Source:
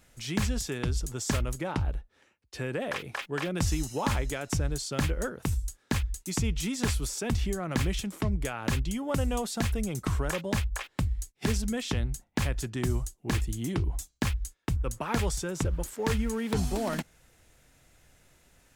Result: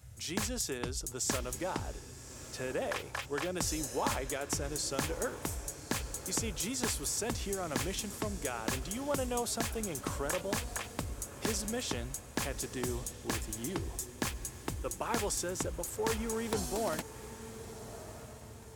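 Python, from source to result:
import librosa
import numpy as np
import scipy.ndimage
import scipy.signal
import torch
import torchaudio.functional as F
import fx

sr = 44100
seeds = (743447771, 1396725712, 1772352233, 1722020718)

y = fx.high_shelf(x, sr, hz=2100.0, db=-11.0)
y = fx.dmg_noise_band(y, sr, seeds[0], low_hz=54.0, high_hz=130.0, level_db=-41.0)
y = fx.bass_treble(y, sr, bass_db=-13, treble_db=13)
y = fx.echo_diffused(y, sr, ms=1207, feedback_pct=45, wet_db=-13)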